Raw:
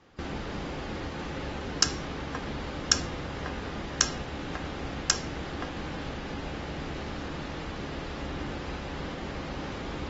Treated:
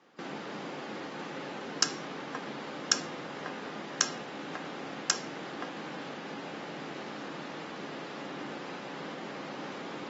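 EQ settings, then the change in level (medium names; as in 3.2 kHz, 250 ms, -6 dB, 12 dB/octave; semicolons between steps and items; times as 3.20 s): high-pass 160 Hz 24 dB/octave; tilt EQ +2 dB/octave; treble shelf 2.2 kHz -9.5 dB; 0.0 dB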